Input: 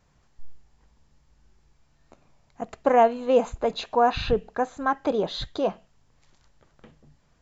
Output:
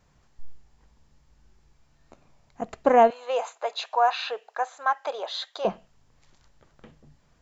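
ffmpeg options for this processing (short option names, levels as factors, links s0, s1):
-filter_complex "[0:a]asettb=1/sr,asplit=3[s0][s1][s2];[s0]atrim=end=3.104[s3];[s1]atrim=start=3.1:end=5.65,asetpts=PTS-STARTPTS,afade=t=in:d=0.004:c=qsin,afade=t=out:st=2.546:d=0.004:c=qsin,highpass=f=630:w=0.5412,highpass=f=630:w=1.3066[s4];[s2]atrim=start=5.646[s5];[s3][s4]acrossfade=d=0.004:c1=hsin:c2=qsin[s6];[s6][s5]acrossfade=d=0.004:c1=qsin:c2=hsin,volume=1.12"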